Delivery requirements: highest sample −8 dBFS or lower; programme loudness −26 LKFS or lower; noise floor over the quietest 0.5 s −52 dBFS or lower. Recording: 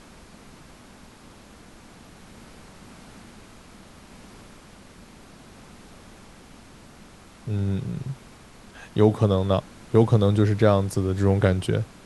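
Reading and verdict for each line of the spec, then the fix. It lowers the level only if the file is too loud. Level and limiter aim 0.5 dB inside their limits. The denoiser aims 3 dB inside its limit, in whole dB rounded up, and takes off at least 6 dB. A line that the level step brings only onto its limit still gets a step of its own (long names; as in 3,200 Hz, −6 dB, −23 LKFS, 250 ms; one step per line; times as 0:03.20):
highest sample −4.0 dBFS: out of spec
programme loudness −22.5 LKFS: out of spec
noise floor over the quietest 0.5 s −48 dBFS: out of spec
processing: broadband denoise 6 dB, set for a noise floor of −48 dBFS
level −4 dB
brickwall limiter −8.5 dBFS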